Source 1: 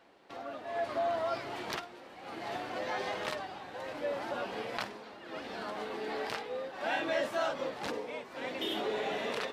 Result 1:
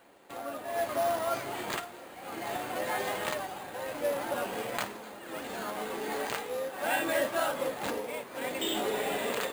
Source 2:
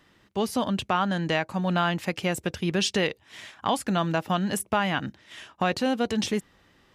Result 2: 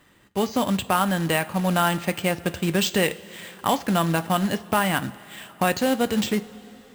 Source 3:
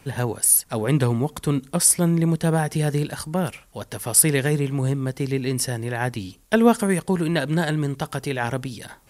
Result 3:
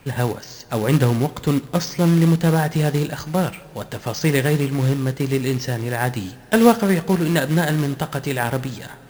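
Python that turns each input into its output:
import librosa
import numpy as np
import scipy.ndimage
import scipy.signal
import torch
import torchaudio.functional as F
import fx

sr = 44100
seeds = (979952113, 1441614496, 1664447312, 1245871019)

y = np.repeat(scipy.signal.resample_poly(x, 1, 4), 4)[:len(x)]
y = fx.quant_float(y, sr, bits=2)
y = fx.rev_double_slope(y, sr, seeds[0], early_s=0.31, late_s=4.2, knee_db=-18, drr_db=10.5)
y = y * 10.0 ** (3.0 / 20.0)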